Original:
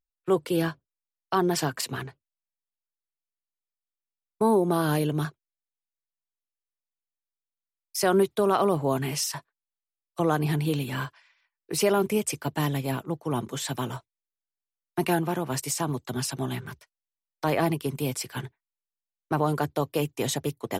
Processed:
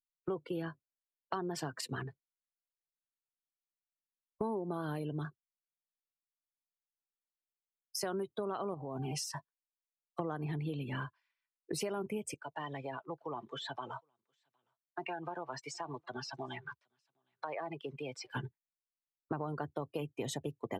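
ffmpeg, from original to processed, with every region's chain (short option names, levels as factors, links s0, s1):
-filter_complex "[0:a]asettb=1/sr,asplit=3[s0][s1][s2];[s0]atrim=end=8.744[s3];[s1]atrim=start=8.74:end=9.16,asetpts=PTS-STARTPTS,afade=t=in:d=0.004:c=qsin,afade=t=out:st=0.416:d=0.004:c=qsin,aeval=exprs='val(0)+0.00891*sin(2*PI*770*n/s)':c=same,acompressor=threshold=0.0398:ratio=12:attack=3.2:release=140:knee=1:detection=peak,asuperstop=centerf=1900:order=4:qfactor=3.2[s4];[s2]atrim=start=9.156[s5];[s3][s4]acrossfade=d=0.004:c1=hsin:c2=qsin[s6];[s6][s5]acrossfade=d=0.004:c1=qsin:c2=hsin,asettb=1/sr,asplit=3[s7][s8][s9];[s7]atrim=end=12.344[s10];[s8]atrim=start=12.34:end=18.31,asetpts=PTS-STARTPTS,afade=t=in:d=0.004:c=qsin,afade=t=out:st=5.966:d=0.004:c=qsin,acrossover=split=480 5800:gain=0.178 1 0.141[s11][s12][s13];[s11][s12][s13]amix=inputs=3:normalize=0,acompressor=threshold=0.0141:ratio=2.5:attack=3.2:release=140:knee=1:detection=peak,aecho=1:1:763:0.112,atrim=end_sample=263277[s14];[s9]atrim=start=18.306[s15];[s10][s14]acrossfade=d=0.004:c1=hsin:c2=qsin[s16];[s16][s15]acrossfade=d=0.004:c1=qsin:c2=hsin,afftdn=nr=22:nf=-38,acompressor=threshold=0.0141:ratio=6,highshelf=f=7700:g=-5,volume=1.19"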